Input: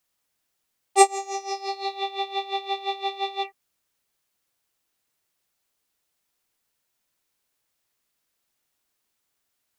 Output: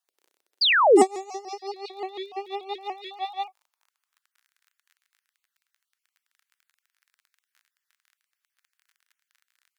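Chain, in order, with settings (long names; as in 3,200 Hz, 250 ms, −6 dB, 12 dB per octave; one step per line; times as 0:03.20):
time-frequency cells dropped at random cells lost 20%
surface crackle 30 per second −40 dBFS
sound drawn into the spectrogram fall, 0:00.61–0:01.03, 210–5,200 Hz −12 dBFS
high-pass filter sweep 390 Hz → 1,600 Hz, 0:02.60–0:04.43
pitch modulation by a square or saw wave saw up 6.9 Hz, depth 100 cents
level −7.5 dB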